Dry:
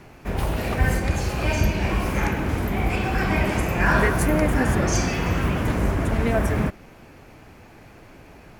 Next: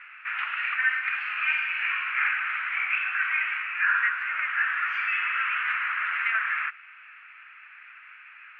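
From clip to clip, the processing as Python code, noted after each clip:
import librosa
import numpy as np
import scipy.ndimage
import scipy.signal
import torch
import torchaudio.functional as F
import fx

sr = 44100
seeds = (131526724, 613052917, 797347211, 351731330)

y = scipy.signal.sosfilt(scipy.signal.ellip(3, 1.0, 60, [1300.0, 2700.0], 'bandpass', fs=sr, output='sos'), x)
y = fx.rider(y, sr, range_db=5, speed_s=0.5)
y = y * 10.0 ** (5.5 / 20.0)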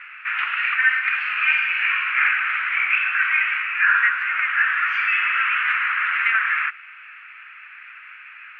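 y = fx.peak_eq(x, sr, hz=410.0, db=-10.0, octaves=1.7)
y = y * 10.0 ** (7.5 / 20.0)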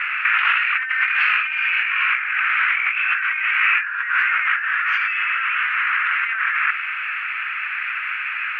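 y = fx.over_compress(x, sr, threshold_db=-29.0, ratio=-1.0)
y = y * 10.0 ** (8.5 / 20.0)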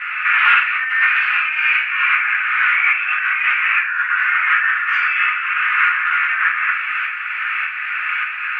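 y = fx.tremolo_shape(x, sr, shape='saw_up', hz=1.7, depth_pct=60)
y = fx.room_shoebox(y, sr, seeds[0], volume_m3=31.0, walls='mixed', distance_m=0.87)
y = y * 10.0 ** (1.0 / 20.0)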